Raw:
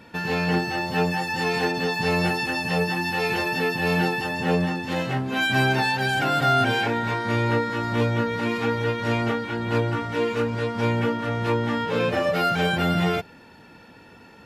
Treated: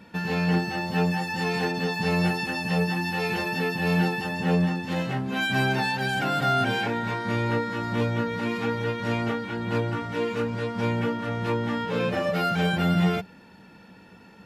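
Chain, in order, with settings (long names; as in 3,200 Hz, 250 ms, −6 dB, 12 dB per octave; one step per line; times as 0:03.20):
parametric band 190 Hz +12.5 dB 0.2 octaves
level −3.5 dB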